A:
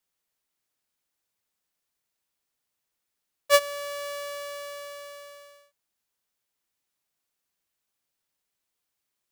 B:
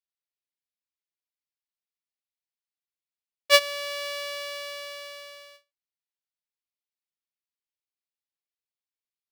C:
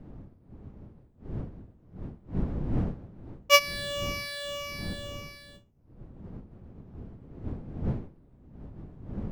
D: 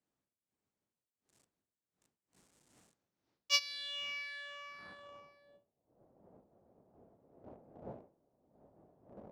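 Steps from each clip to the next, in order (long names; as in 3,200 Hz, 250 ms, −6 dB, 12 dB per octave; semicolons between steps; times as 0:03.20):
noise gate with hold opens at −42 dBFS; flat-topped bell 3,200 Hz +8.5 dB; level −1 dB
rippled gain that drifts along the octave scale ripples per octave 0.83, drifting −1.8 Hz, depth 13 dB; wind on the microphone 180 Hz −34 dBFS; level −3.5 dB
in parallel at −10.5 dB: centre clipping without the shift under −31 dBFS; on the sum: band-pass filter sweep 8,000 Hz → 650 Hz, 0:02.89–0:05.54; level −4.5 dB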